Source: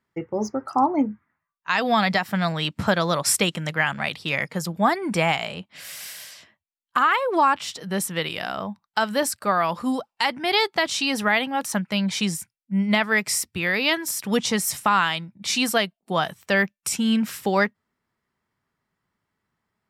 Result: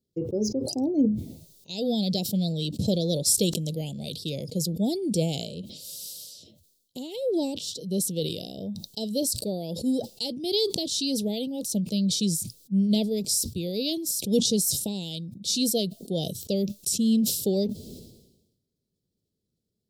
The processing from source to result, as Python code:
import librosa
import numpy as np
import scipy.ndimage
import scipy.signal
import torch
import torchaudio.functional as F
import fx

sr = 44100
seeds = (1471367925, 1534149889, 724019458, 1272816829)

y = fx.high_shelf(x, sr, hz=11000.0, db=9.0, at=(3.37, 4.3))
y = scipy.signal.sosfilt(scipy.signal.ellip(3, 1.0, 60, [500.0, 3900.0], 'bandstop', fs=sr, output='sos'), y)
y = fx.sustainer(y, sr, db_per_s=56.0)